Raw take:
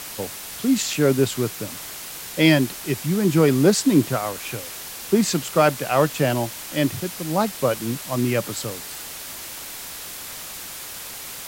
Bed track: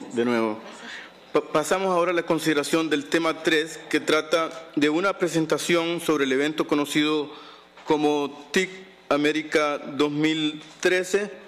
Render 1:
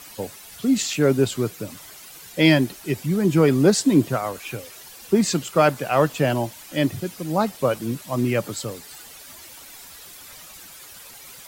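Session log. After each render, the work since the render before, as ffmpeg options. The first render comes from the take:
ffmpeg -i in.wav -af "afftdn=noise_reduction=11:noise_floor=-36" out.wav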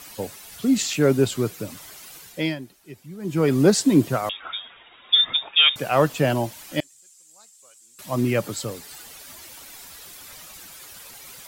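ffmpeg -i in.wav -filter_complex "[0:a]asettb=1/sr,asplit=3[link_01][link_02][link_03];[link_01]atrim=end=4.294[link_04];[link_02]atrim=start=4.29:end=5.76,asetpts=PTS-STARTPTS,afade=type=in:duration=0.004:curve=qsin,afade=type=out:start_time=1.466:duration=0.004:curve=qsin,lowpass=frequency=3200:width_type=q:width=0.5098,lowpass=frequency=3200:width_type=q:width=0.6013,lowpass=frequency=3200:width_type=q:width=0.9,lowpass=frequency=3200:width_type=q:width=2.563,afreqshift=-3800[link_05];[link_03]atrim=start=5.756[link_06];[link_04][link_05]acrossfade=duration=0.004:curve1=hsin:curve2=qsin[link_07];[link_07][link_06]acrossfade=duration=0.004:curve1=qsin:curve2=hsin,asettb=1/sr,asplit=3[link_08][link_09][link_10];[link_08]atrim=end=6.804[link_11];[link_09]atrim=start=6.8:end=7.99,asetpts=PTS-STARTPTS,afade=type=in:duration=0.004:curve=qsin,afade=type=out:start_time=1.186:duration=0.004:curve=qsin,bandpass=frequency=7500:width_type=q:width=5.9[link_12];[link_10]atrim=start=7.986[link_13];[link_11][link_12]acrossfade=duration=0.004:curve1=hsin:curve2=qsin[link_14];[link_14][link_13]acrossfade=duration=0.004:curve1=qsin:curve2=hsin,asplit=3[link_15][link_16][link_17];[link_15]atrim=end=2.56,asetpts=PTS-STARTPTS,afade=type=out:start_time=2.14:duration=0.42:silence=0.149624[link_18];[link_16]atrim=start=2.56:end=3.18,asetpts=PTS-STARTPTS,volume=-16.5dB[link_19];[link_17]atrim=start=3.18,asetpts=PTS-STARTPTS,afade=type=in:duration=0.42:silence=0.149624[link_20];[link_18][link_19][link_20]concat=n=3:v=0:a=1" out.wav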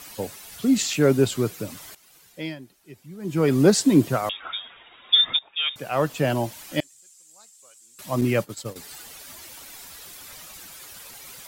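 ffmpeg -i in.wav -filter_complex "[0:a]asettb=1/sr,asplit=3[link_01][link_02][link_03];[link_01]atrim=end=8.214[link_04];[link_02]atrim=start=8.21:end=8.76,asetpts=PTS-STARTPTS,afade=type=in:duration=0.004:curve=qsin,afade=type=out:start_time=0.546:duration=0.004:curve=qsin,agate=range=-33dB:threshold=-26dB:ratio=3:release=100:detection=peak[link_05];[link_03]atrim=start=8.756[link_06];[link_04][link_05]acrossfade=duration=0.004:curve1=hsin:curve2=qsin[link_07];[link_07][link_06]acrossfade=duration=0.004:curve1=qsin:curve2=hsin,asplit=3[link_08][link_09][link_10];[link_08]atrim=end=1.95,asetpts=PTS-STARTPTS,afade=type=out:start_time=1.946:duration=0.004:curve=hsin:silence=0.177828[link_11];[link_09]atrim=start=1.95:end=5.39,asetpts=PTS-STARTPTS,afade=type=in:duration=1.6:silence=0.177828,afade=type=out:start_time=3.436:duration=0.004:curve=hsin:silence=0.149624[link_12];[link_10]atrim=start=5.39,asetpts=PTS-STARTPTS,afade=type=in:duration=1.15:silence=0.149624[link_13];[link_11][link_12][link_13]concat=n=3:v=0:a=1" out.wav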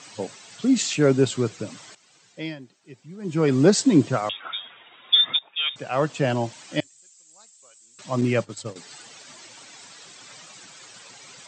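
ffmpeg -i in.wav -af "afftfilt=real='re*between(b*sr/4096,100,8400)':imag='im*between(b*sr/4096,100,8400)':win_size=4096:overlap=0.75" out.wav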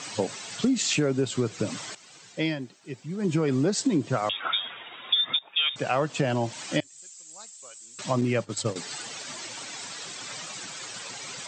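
ffmpeg -i in.wav -filter_complex "[0:a]asplit=2[link_01][link_02];[link_02]alimiter=limit=-16dB:level=0:latency=1:release=233,volume=2dB[link_03];[link_01][link_03]amix=inputs=2:normalize=0,acompressor=threshold=-22dB:ratio=5" out.wav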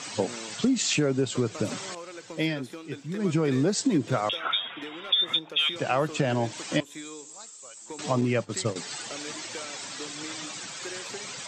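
ffmpeg -i in.wav -i bed.wav -filter_complex "[1:a]volume=-19.5dB[link_01];[0:a][link_01]amix=inputs=2:normalize=0" out.wav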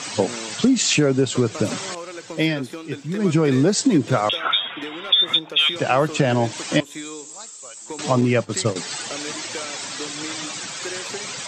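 ffmpeg -i in.wav -af "volume=7dB" out.wav

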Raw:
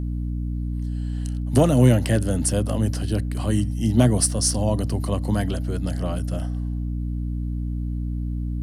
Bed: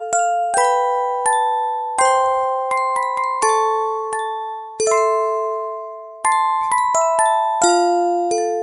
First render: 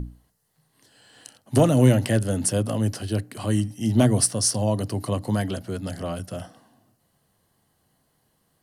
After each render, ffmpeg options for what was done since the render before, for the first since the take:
ffmpeg -i in.wav -af "bandreject=frequency=60:width_type=h:width=6,bandreject=frequency=120:width_type=h:width=6,bandreject=frequency=180:width_type=h:width=6,bandreject=frequency=240:width_type=h:width=6,bandreject=frequency=300:width_type=h:width=6" out.wav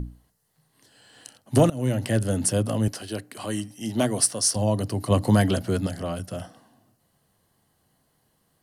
ffmpeg -i in.wav -filter_complex "[0:a]asettb=1/sr,asplit=3[link_01][link_02][link_03];[link_01]atrim=end=2.884[link_04];[link_02]atrim=start=2.88:end=4.56,asetpts=PTS-STARTPTS,afade=type=in:duration=0.004:curve=qsin,afade=type=out:start_time=1.676:duration=0.004:curve=qsin,highpass=frequency=410:poles=1[link_05];[link_03]atrim=start=4.556[link_06];[link_04][link_05]acrossfade=duration=0.004:curve1=hsin:curve2=qsin[link_07];[link_07][link_06]acrossfade=duration=0.004:curve1=qsin:curve2=hsin,asettb=1/sr,asplit=3[link_08][link_09][link_10];[link_08]atrim=end=5.104[link_11];[link_09]atrim=start=5.1:end=5.87,asetpts=PTS-STARTPTS,afade=type=in:duration=0.004:curve=qsin,afade=type=out:start_time=0.766:duration=0.004:curve=qsin,acontrast=45[link_12];[link_10]atrim=start=5.866[link_13];[link_11][link_12]acrossfade=duration=0.004:curve1=hsin:curve2=qsin[link_14];[link_14][link_13]acrossfade=duration=0.004:curve1=qsin:curve2=hsin,asplit=2[link_15][link_16];[link_15]atrim=end=1.7,asetpts=PTS-STARTPTS,afade=type=out:start_time=1.696:duration=0.004:curve=hsin:silence=0.0891251[link_17];[link_16]atrim=start=1.7,asetpts=PTS-STARTPTS,afade=type=in:duration=0.55:silence=0.0891251[link_18];[link_17][link_18]concat=n=2:v=0:a=1" out.wav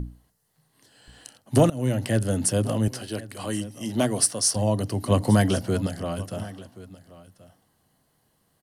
ffmpeg -i in.wav -af "aecho=1:1:1079:0.119" out.wav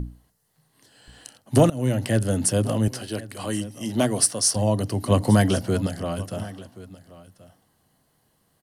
ffmpeg -i in.wav -af "volume=1.5dB" out.wav

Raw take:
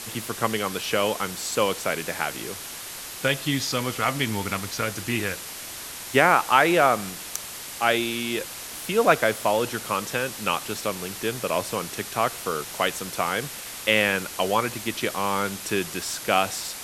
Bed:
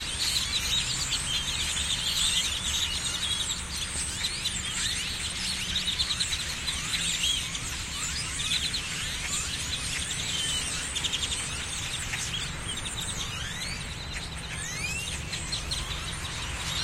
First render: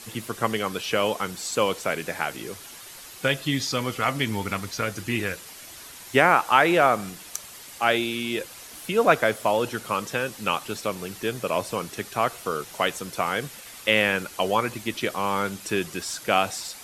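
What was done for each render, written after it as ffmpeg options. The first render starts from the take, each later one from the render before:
ffmpeg -i in.wav -af "afftdn=noise_reduction=8:noise_floor=-37" out.wav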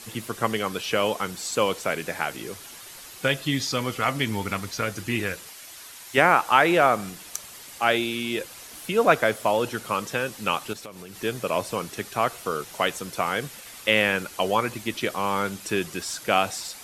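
ffmpeg -i in.wav -filter_complex "[0:a]asettb=1/sr,asplit=3[link_01][link_02][link_03];[link_01]atrim=end=5.494[link_04];[link_02]atrim=start=5.49:end=6.18,asetpts=PTS-STARTPTS,afade=type=in:duration=0.004:curve=qsin,afade=type=out:start_time=0.686:duration=0.004:curve=qsin,lowshelf=frequency=480:gain=-9[link_05];[link_03]atrim=start=6.176[link_06];[link_04][link_05]acrossfade=duration=0.004:curve1=hsin:curve2=qsin[link_07];[link_07][link_06]acrossfade=duration=0.004:curve1=qsin:curve2=hsin,asettb=1/sr,asplit=3[link_08][link_09][link_10];[link_08]atrim=end=10.734[link_11];[link_09]atrim=start=10.73:end=11.21,asetpts=PTS-STARTPTS,afade=type=in:duration=0.004:curve=qsin,afade=type=out:start_time=0.476:duration=0.004:curve=qsin,acompressor=threshold=-37dB:ratio=5:attack=3.2:release=140:knee=1:detection=peak[link_12];[link_10]atrim=start=11.206[link_13];[link_11][link_12]acrossfade=duration=0.004:curve1=hsin:curve2=qsin[link_14];[link_14][link_13]acrossfade=duration=0.004:curve1=qsin:curve2=hsin" out.wav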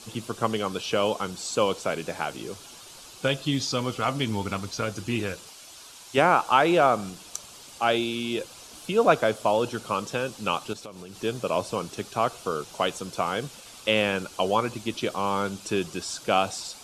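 ffmpeg -i in.wav -af "lowpass=8300,equalizer=frequency=1900:width_type=o:width=0.54:gain=-11" out.wav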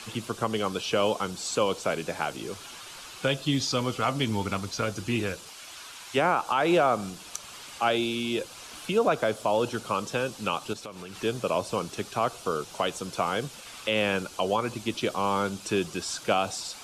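ffmpeg -i in.wav -filter_complex "[0:a]acrossover=split=400|1200|2600[link_01][link_02][link_03][link_04];[link_03]acompressor=mode=upward:threshold=-38dB:ratio=2.5[link_05];[link_01][link_02][link_05][link_04]amix=inputs=4:normalize=0,alimiter=limit=-13.5dB:level=0:latency=1:release=143" out.wav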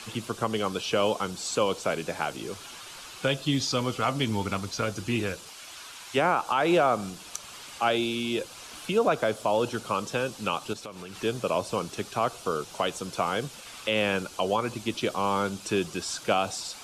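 ffmpeg -i in.wav -af anull out.wav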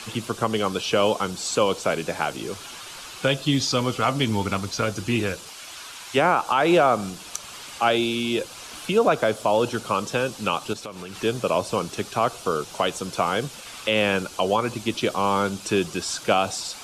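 ffmpeg -i in.wav -af "volume=4.5dB" out.wav

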